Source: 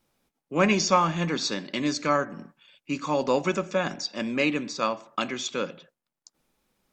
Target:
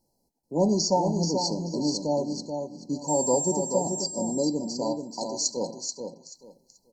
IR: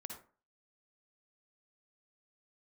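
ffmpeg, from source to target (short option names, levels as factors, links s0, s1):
-filter_complex "[0:a]asettb=1/sr,asplit=3[s0][s1][s2];[s0]atrim=end=3.084[s3];[s1]atrim=start=3.08:end=4.04,asetpts=PTS-STARTPTS,afade=t=in:d=0.004:c=qsin,afade=t=out:st=0.956:d=0.004:c=qsin,aeval=exprs='val(0)+0.0447*sin(2*PI*7500*n/s)':c=same[s4];[s2]atrim=start=4.036[s5];[s3][s4]acrossfade=d=0.004:c1=hsin:c2=qsin[s6];[s6][s5]acrossfade=d=0.004:c1=qsin:c2=hsin,asettb=1/sr,asplit=3[s7][s8][s9];[s7]atrim=end=5.084[s10];[s8]atrim=start=5.08:end=5.57,asetpts=PTS-STARTPTS,afade=t=in:d=0.004:c=qsin,afade=t=out:st=0.486:d=0.004:c=qsin,tiltshelf=f=660:g=-9[s11];[s9]atrim=start=5.566[s12];[s10][s11]acrossfade=d=0.004:c1=hsin:c2=qsin[s13];[s13][s12]acrossfade=d=0.004:c1=qsin:c2=hsin,afftfilt=real='re*(1-between(b*sr/4096,1000,4000))':imag='im*(1-between(b*sr/4096,1000,4000))':win_size=4096:overlap=0.75,asplit=2[s14][s15];[s15]aecho=0:1:433|866|1299:0.501|0.105|0.0221[s16];[s14][s16]amix=inputs=2:normalize=0"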